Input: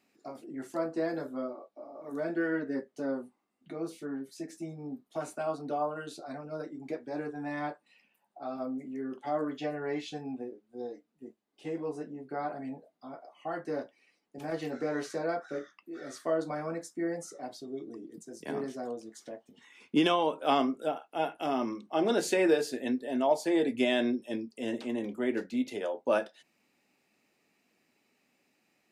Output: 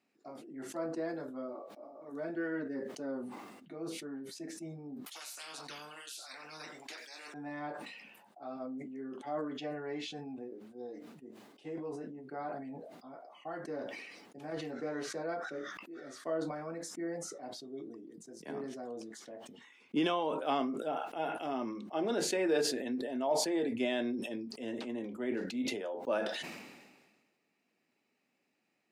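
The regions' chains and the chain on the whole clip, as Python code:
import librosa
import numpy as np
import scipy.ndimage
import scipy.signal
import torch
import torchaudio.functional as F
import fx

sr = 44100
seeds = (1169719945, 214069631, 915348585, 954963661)

y = fx.chain(x, sr, fx.echo_single(ms=92, db=-20.0),
    fx.filter_lfo_highpass(shape='sine', hz=1.1, low_hz=520.0, high_hz=4800.0, q=0.72),
    fx.spectral_comp(ratio=10.0), at=(5.06, 7.34))
y = scipy.signal.sosfilt(scipy.signal.butter(2, 100.0, 'highpass', fs=sr, output='sos'), y)
y = fx.high_shelf(y, sr, hz=6600.0, db=-8.0)
y = fx.sustainer(y, sr, db_per_s=40.0)
y = y * 10.0 ** (-6.0 / 20.0)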